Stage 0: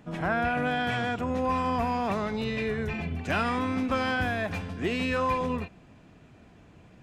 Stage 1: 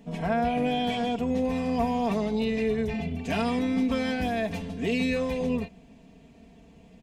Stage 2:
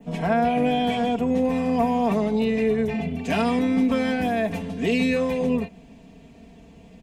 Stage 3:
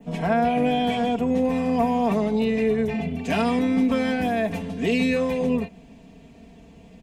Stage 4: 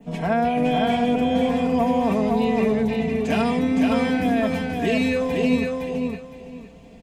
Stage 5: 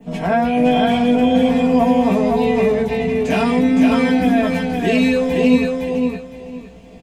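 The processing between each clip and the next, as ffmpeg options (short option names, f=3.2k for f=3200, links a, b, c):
-af "equalizer=f=1.4k:t=o:w=0.69:g=-13,aecho=1:1:4.4:0.81"
-filter_complex "[0:a]adynamicequalizer=threshold=0.00282:dfrequency=4600:dqfactor=0.95:tfrequency=4600:tqfactor=0.95:attack=5:release=100:ratio=0.375:range=3.5:mode=cutabove:tftype=bell,acrossover=split=110|530|4100[a][b][c][d];[a]acompressor=threshold=-49dB:ratio=6[e];[e][b][c][d]amix=inputs=4:normalize=0,volume=5dB"
-af anull
-af "aecho=1:1:512|1024|1536:0.668|0.147|0.0323"
-filter_complex "[0:a]asplit=2[a][b];[b]adelay=16,volume=-3.5dB[c];[a][c]amix=inputs=2:normalize=0,volume=3dB"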